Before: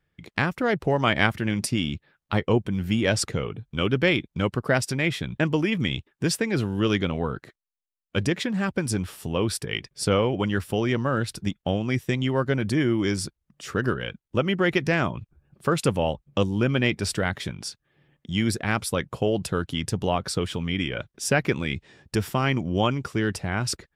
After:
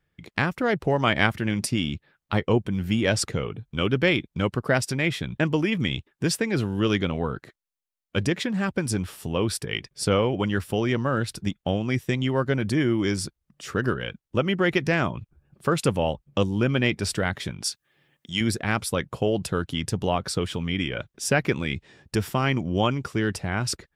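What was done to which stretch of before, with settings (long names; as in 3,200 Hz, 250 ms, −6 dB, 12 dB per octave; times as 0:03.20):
0:17.64–0:18.41: spectral tilt +2.5 dB per octave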